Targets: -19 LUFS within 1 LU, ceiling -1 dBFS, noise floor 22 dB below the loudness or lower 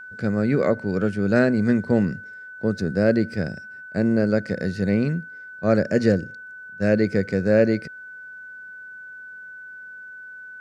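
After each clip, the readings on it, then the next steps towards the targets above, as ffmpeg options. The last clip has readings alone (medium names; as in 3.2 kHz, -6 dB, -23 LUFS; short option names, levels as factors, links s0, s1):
steady tone 1.5 kHz; tone level -37 dBFS; loudness -22.0 LUFS; peak level -5.0 dBFS; loudness target -19.0 LUFS
-> -af "bandreject=f=1500:w=30"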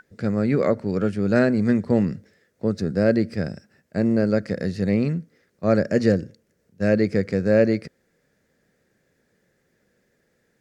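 steady tone not found; loudness -22.5 LUFS; peak level -5.0 dBFS; loudness target -19.0 LUFS
-> -af "volume=1.5"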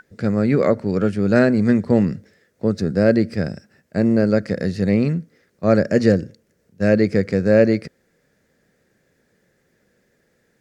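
loudness -19.0 LUFS; peak level -1.5 dBFS; noise floor -65 dBFS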